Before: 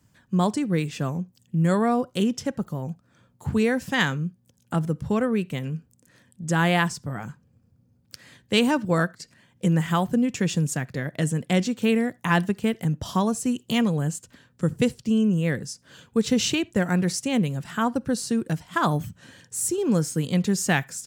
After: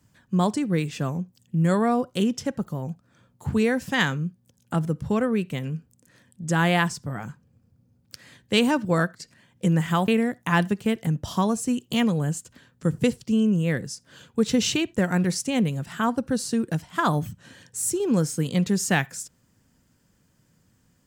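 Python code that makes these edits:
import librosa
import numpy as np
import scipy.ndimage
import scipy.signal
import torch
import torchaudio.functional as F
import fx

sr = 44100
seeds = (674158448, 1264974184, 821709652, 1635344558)

y = fx.edit(x, sr, fx.cut(start_s=10.08, length_s=1.78), tone=tone)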